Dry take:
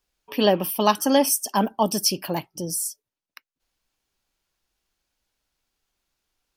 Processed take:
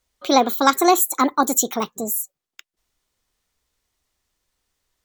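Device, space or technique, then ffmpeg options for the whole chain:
nightcore: -af "asetrate=57330,aresample=44100,volume=3.5dB"

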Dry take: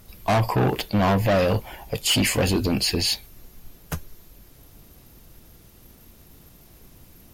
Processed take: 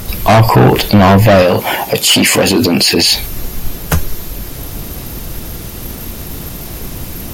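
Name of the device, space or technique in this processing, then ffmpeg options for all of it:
loud club master: -filter_complex "[0:a]asettb=1/sr,asplit=3[a][b][c];[a]atrim=end=1.424[d];[b]atrim=start=1.42:end=3.07,asetpts=PTS-STARTPTS,afade=t=in:d=0.004:c=qsin,afade=t=out:st=1.646:d=0.004:c=qsin,highpass=190[e];[c]atrim=start=3.066[f];[d][e]acrossfade=d=0.004:c1=hsin:c2=qsin[g];[g][f]acrossfade=d=0.004:c1=qsin:c2=hsin,acompressor=threshold=-23dB:ratio=2,asoftclip=type=hard:threshold=-15.5dB,alimiter=level_in=26dB:limit=-1dB:release=50:level=0:latency=1,volume=-1dB"

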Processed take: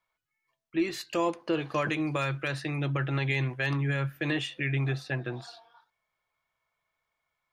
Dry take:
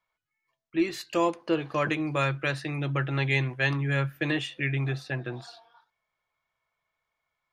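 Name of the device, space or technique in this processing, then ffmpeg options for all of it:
clipper into limiter: -filter_complex "[0:a]asettb=1/sr,asplit=3[a][b][c];[a]atrim=end=1.544[d];[b]atrim=start=1.54:end=2.48,asetpts=PTS-STARTPTS,afade=t=in:d=0.004:c=qsin,afade=t=out:st=0.936:d=0.004:c=qsin,highshelf=f=3k:g=4[e];[c]atrim=start=2.476[f];[d][e]acrossfade=d=0.004:c1=hsin:c2=qsin[g];[g][f]acrossfade=d=0.004:c1=qsin:c2=hsin,asoftclip=type=hard:threshold=-13dB,alimiter=limit=-18dB:level=0:latency=1:release=56"

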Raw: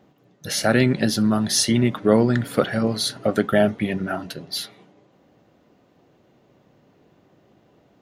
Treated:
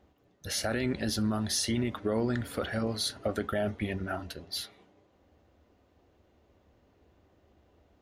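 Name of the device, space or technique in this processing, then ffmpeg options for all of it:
car stereo with a boomy subwoofer: -af "lowshelf=f=100:t=q:w=3:g=10.5,alimiter=limit=-12.5dB:level=0:latency=1:release=25,volume=-7.5dB"

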